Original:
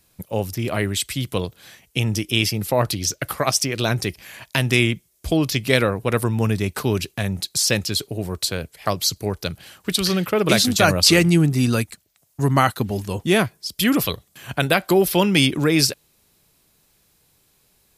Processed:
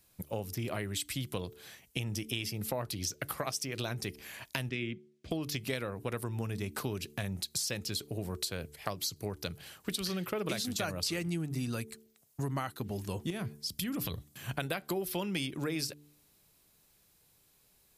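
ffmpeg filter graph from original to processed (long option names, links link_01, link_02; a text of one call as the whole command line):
ffmpeg -i in.wav -filter_complex "[0:a]asettb=1/sr,asplit=3[link_01][link_02][link_03];[link_01]atrim=end=4.694[link_04];[link_02]atrim=start=4.69:end=5.31,asetpts=PTS-STARTPTS,afade=type=in:duration=0.004:curve=qsin,afade=type=out:start_time=0.616:duration=0.004:curve=qsin,highpass=150,lowpass=2700,equalizer=frequency=920:width=1.1:gain=-13[link_05];[link_03]atrim=start=5.306[link_06];[link_04][link_05]acrossfade=duration=0.004:curve1=hsin:curve2=qsin[link_07];[link_07][link_06]acrossfade=duration=0.004:curve1=qsin:curve2=hsin,asettb=1/sr,asplit=3[link_08][link_09][link_10];[link_08]atrim=end=13.304[link_11];[link_09]atrim=start=13.3:end=14.51,asetpts=PTS-STARTPTS,afade=type=in:duration=0.004:curve=qsin,afade=type=out:start_time=1.206:duration=0.004:curve=qsin,highpass=46,bass=frequency=250:gain=9,treble=frequency=4000:gain=1,acompressor=threshold=-21dB:ratio=12:attack=3.2:release=140:knee=1:detection=peak[link_12];[link_10]atrim=start=14.506[link_13];[link_11][link_12]acrossfade=duration=0.004:curve1=hsin:curve2=qsin[link_14];[link_14][link_13]acrossfade=duration=0.004:curve1=qsin:curve2=hsin,highshelf=frequency=12000:gain=4,bandreject=frequency=73.61:width_type=h:width=4,bandreject=frequency=147.22:width_type=h:width=4,bandreject=frequency=220.83:width_type=h:width=4,bandreject=frequency=294.44:width_type=h:width=4,bandreject=frequency=368.05:width_type=h:width=4,bandreject=frequency=441.66:width_type=h:width=4,acompressor=threshold=-25dB:ratio=6,volume=-7dB" out.wav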